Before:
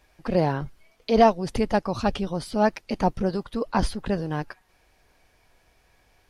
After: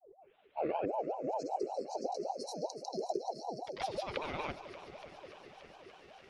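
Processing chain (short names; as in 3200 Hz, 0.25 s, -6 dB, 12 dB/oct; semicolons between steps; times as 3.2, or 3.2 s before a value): tape start at the beginning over 2.02 s; de-hum 227.9 Hz, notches 31; spectral delete 0.89–3.72, 250–4600 Hz; compressor 6:1, threshold -28 dBFS, peak gain reduction 13 dB; graphic EQ 500/1000/2000 Hz -12/-11/+12 dB; grains, pitch spread up and down by 0 st; air absorption 84 m; fixed phaser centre 450 Hz, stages 4; echo with dull and thin repeats by turns 0.145 s, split 1100 Hz, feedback 89%, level -13 dB; ring modulator with a swept carrier 580 Hz, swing 35%, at 5.2 Hz; gain +6 dB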